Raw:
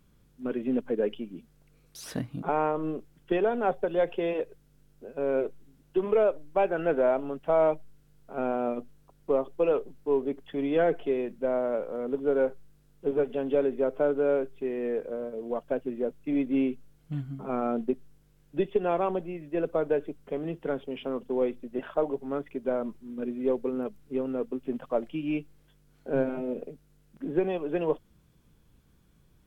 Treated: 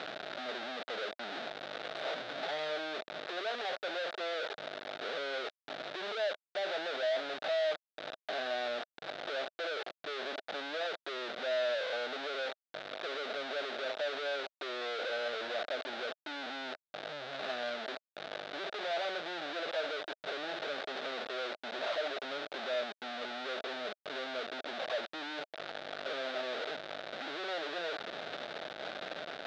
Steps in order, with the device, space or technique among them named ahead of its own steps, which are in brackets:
inverse Chebyshev low-pass filter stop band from 2,000 Hz, stop band 40 dB
home computer beeper (sign of each sample alone; loudspeaker in its box 590–4,600 Hz, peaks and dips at 630 Hz +9 dB, 1,000 Hz −9 dB, 1,500 Hz +6 dB, 3,700 Hz +9 dB)
level −5.5 dB

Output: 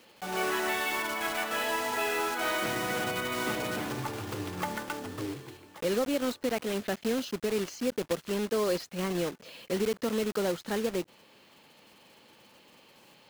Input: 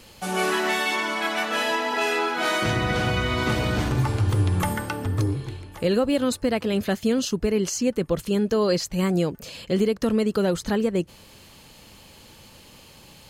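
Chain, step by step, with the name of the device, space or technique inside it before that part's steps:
early digital voice recorder (band-pass filter 240–3,500 Hz; one scale factor per block 3 bits)
level −6 dB

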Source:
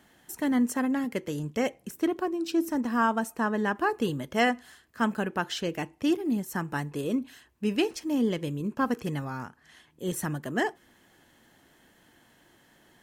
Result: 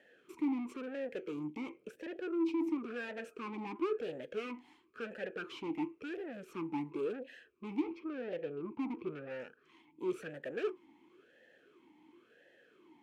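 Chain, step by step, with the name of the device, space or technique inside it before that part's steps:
0:07.79–0:09.30: high-frequency loss of the air 280 metres
talk box (tube saturation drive 37 dB, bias 0.65; formant filter swept between two vowels e-u 0.96 Hz)
level +12 dB

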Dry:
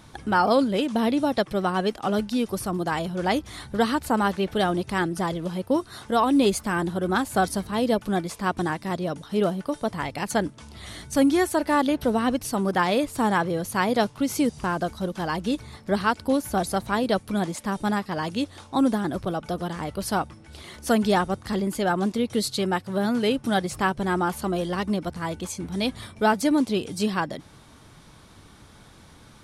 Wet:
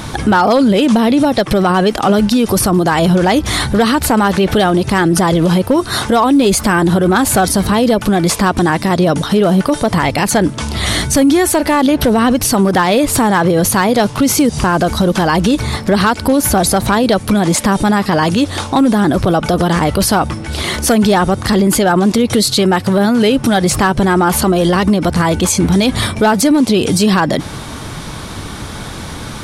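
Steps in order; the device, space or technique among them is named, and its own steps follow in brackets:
loud club master (downward compressor 2.5 to 1, threshold −23 dBFS, peak gain reduction 6 dB; hard clipping −18.5 dBFS, distortion −23 dB; boost into a limiter +27.5 dB)
level −3.5 dB

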